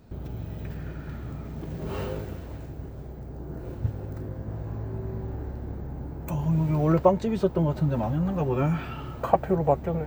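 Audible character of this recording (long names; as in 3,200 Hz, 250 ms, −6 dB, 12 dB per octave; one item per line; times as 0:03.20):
background noise floor −39 dBFS
spectral slope −7.5 dB per octave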